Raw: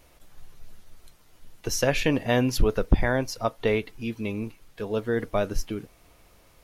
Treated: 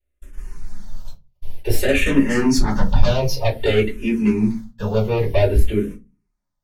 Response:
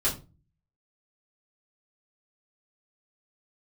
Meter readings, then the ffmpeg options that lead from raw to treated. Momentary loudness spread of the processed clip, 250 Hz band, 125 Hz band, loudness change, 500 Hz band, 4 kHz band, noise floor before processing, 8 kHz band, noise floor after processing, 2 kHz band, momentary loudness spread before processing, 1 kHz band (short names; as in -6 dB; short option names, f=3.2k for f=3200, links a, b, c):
9 LU, +9.0 dB, +9.0 dB, +7.0 dB, +6.0 dB, +5.5 dB, -58 dBFS, +2.5 dB, -74 dBFS, +5.0 dB, 12 LU, +3.5 dB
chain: -filter_complex "[0:a]agate=range=-38dB:threshold=-46dB:ratio=16:detection=peak,asplit=2[a][b];[b]aeval=exprs='0.355*sin(PI/2*4.47*val(0)/0.355)':c=same,volume=-5dB[c];[a][c]amix=inputs=2:normalize=0[d];[1:a]atrim=start_sample=2205,asetrate=66150,aresample=44100[e];[d][e]afir=irnorm=-1:irlink=0,asplit=2[f][g];[g]afreqshift=-0.53[h];[f][h]amix=inputs=2:normalize=1,volume=-7.5dB"